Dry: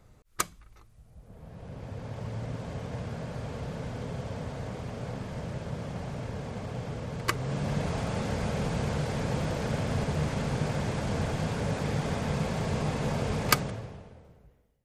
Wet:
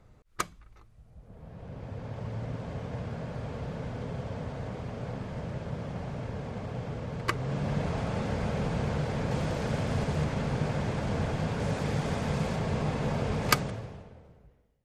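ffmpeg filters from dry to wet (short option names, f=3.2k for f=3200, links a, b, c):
-af "asetnsamples=n=441:p=0,asendcmd='9.31 lowpass f 7600;10.24 lowpass f 4000;11.6 lowpass f 10000;12.56 lowpass f 4000;13.43 lowpass f 8300;14.03 lowpass f 4600',lowpass=f=3.5k:p=1"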